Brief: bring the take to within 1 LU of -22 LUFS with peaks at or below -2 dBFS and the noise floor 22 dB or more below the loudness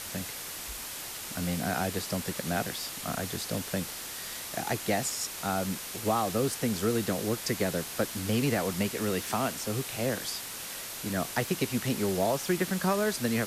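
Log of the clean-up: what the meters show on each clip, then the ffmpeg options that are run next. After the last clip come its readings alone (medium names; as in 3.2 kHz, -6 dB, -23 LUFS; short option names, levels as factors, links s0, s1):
noise floor -40 dBFS; noise floor target -53 dBFS; loudness -31.0 LUFS; peak level -14.5 dBFS; loudness target -22.0 LUFS
-> -af "afftdn=nr=13:nf=-40"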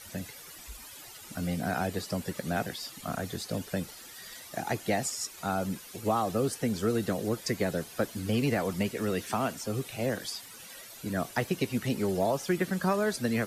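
noise floor -48 dBFS; noise floor target -54 dBFS
-> -af "afftdn=nr=6:nf=-48"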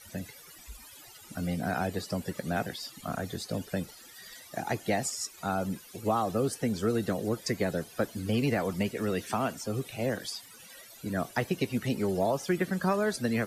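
noise floor -51 dBFS; noise floor target -54 dBFS
-> -af "afftdn=nr=6:nf=-51"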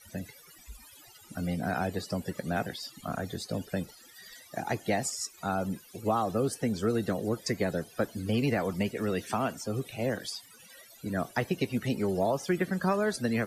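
noise floor -55 dBFS; loudness -32.0 LUFS; peak level -14.5 dBFS; loudness target -22.0 LUFS
-> -af "volume=3.16"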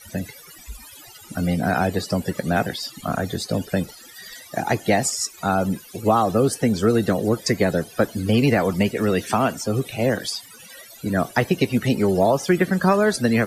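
loudness -22.0 LUFS; peak level -4.5 dBFS; noise floor -45 dBFS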